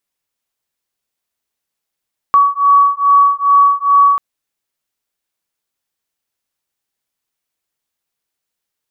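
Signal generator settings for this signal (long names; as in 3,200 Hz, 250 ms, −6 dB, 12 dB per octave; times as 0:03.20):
two tones that beat 1,130 Hz, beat 2.4 Hz, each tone −10.5 dBFS 1.84 s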